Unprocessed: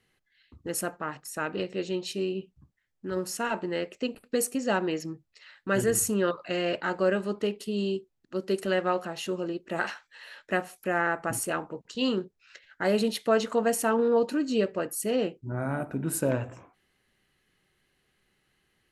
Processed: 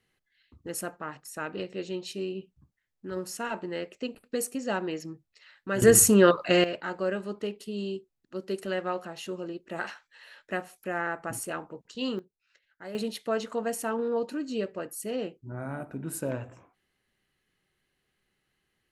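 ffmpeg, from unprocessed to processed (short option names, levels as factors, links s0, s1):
-af "asetnsamples=n=441:p=0,asendcmd='5.82 volume volume 8dB;6.64 volume volume -4.5dB;12.19 volume volume -15.5dB;12.95 volume volume -5.5dB',volume=0.668"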